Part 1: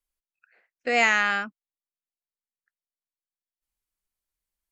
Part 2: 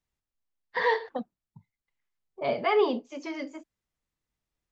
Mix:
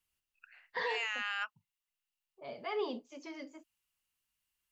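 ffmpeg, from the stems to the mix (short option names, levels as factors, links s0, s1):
-filter_complex "[0:a]highpass=f=860:w=0.5412,highpass=f=860:w=1.3066,equalizer=f=2800:t=o:w=0.21:g=12.5,alimiter=limit=0.119:level=0:latency=1:release=352,volume=1.33[s0];[1:a]adynamicequalizer=threshold=0.00708:dfrequency=3200:dqfactor=0.7:tfrequency=3200:tqfactor=0.7:attack=5:release=100:ratio=0.375:range=3.5:mode=boostabove:tftype=highshelf,volume=1.12,afade=t=out:st=0.69:d=0.72:silence=0.266073,afade=t=in:st=2.51:d=0.44:silence=0.446684,asplit=2[s1][s2];[s2]apad=whole_len=207909[s3];[s0][s3]sidechaincompress=threshold=0.01:ratio=8:attack=16:release=325[s4];[s4][s1]amix=inputs=2:normalize=0,alimiter=level_in=1.26:limit=0.0631:level=0:latency=1:release=14,volume=0.794"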